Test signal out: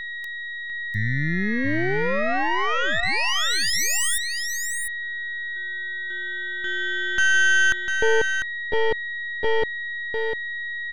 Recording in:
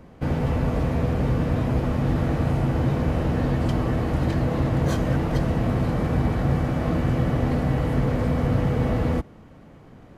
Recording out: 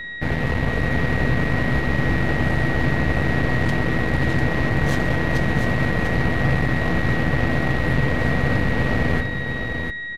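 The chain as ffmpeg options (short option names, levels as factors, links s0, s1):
-af "aeval=exprs='val(0)+0.0355*sin(2*PI*1900*n/s)':c=same,aeval=exprs='0.355*(cos(1*acos(clip(val(0)/0.355,-1,1)))-cos(1*PI/2))+0.00708*(cos(7*acos(clip(val(0)/0.355,-1,1)))-cos(7*PI/2))+0.0447*(cos(8*acos(clip(val(0)/0.355,-1,1)))-cos(8*PI/2))':c=same,aecho=1:1:698:0.473"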